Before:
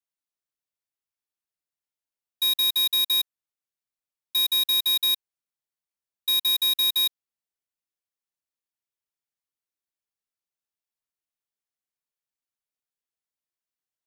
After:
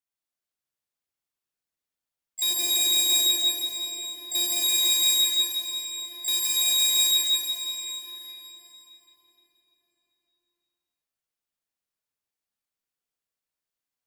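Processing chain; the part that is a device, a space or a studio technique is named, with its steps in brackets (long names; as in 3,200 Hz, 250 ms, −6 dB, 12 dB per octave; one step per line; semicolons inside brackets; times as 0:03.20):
0:02.50–0:04.60: low shelf with overshoot 620 Hz +7.5 dB, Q 1.5
shimmer-style reverb (pitch-shifted copies added +12 semitones −5 dB; convolution reverb RT60 4.5 s, pre-delay 28 ms, DRR −4 dB)
level −3 dB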